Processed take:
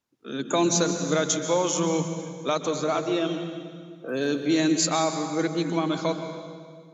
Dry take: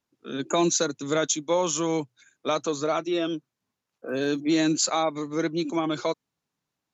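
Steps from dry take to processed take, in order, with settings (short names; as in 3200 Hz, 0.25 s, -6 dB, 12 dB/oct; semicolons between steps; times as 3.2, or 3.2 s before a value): on a send: bell 180 Hz +15 dB 0.34 oct + reverb RT60 1.9 s, pre-delay 0.118 s, DRR 7 dB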